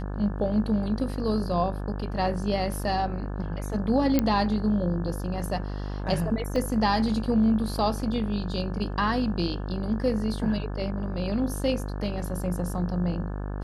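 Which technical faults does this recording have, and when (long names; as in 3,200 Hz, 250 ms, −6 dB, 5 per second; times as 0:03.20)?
mains buzz 50 Hz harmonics 35 −32 dBFS
0:04.19: click −9 dBFS
0:06.56: drop-out 3.1 ms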